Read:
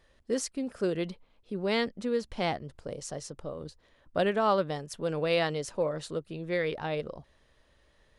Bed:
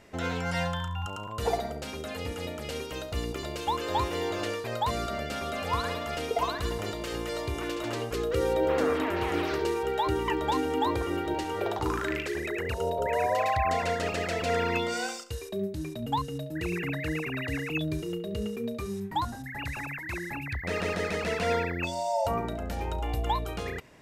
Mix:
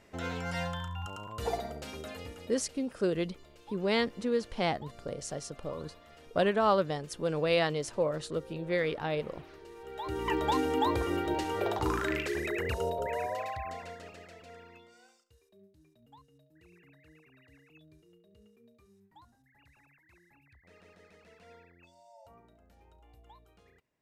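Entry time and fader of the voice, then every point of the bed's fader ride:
2.20 s, 0.0 dB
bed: 2.07 s -5 dB
2.87 s -22.5 dB
9.67 s -22.5 dB
10.34 s -1 dB
12.72 s -1 dB
14.92 s -28.5 dB

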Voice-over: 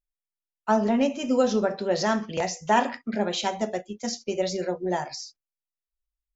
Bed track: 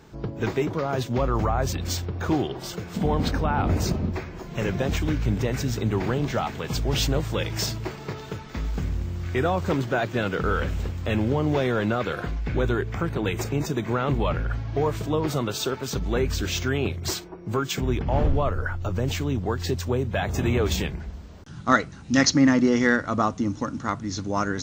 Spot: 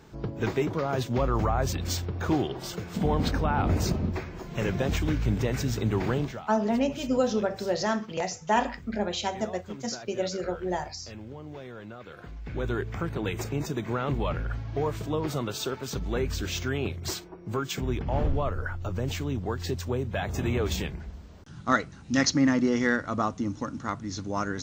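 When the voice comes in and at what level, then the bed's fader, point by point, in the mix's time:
5.80 s, -3.0 dB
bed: 6.20 s -2 dB
6.46 s -18.5 dB
12.01 s -18.5 dB
12.77 s -4.5 dB

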